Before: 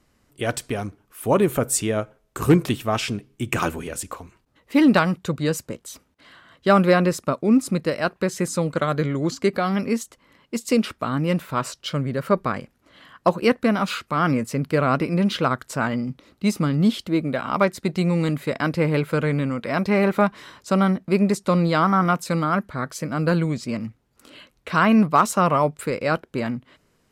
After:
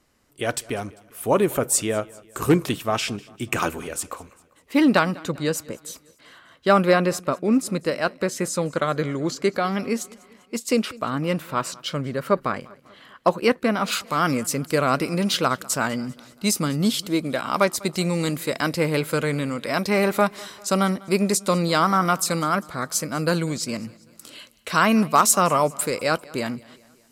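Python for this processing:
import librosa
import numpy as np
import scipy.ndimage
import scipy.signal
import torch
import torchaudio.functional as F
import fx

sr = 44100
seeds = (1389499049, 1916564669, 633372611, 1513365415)

y = fx.bass_treble(x, sr, bass_db=-5, treble_db=fx.steps((0.0, 2.0), (13.91, 13.0)))
y = fx.echo_feedback(y, sr, ms=198, feedback_pct=53, wet_db=-23.0)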